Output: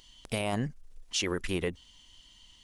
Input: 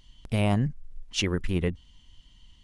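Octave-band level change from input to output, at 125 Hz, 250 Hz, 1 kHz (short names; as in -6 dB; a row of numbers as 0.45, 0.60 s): -10.0, -6.0, -2.5 dB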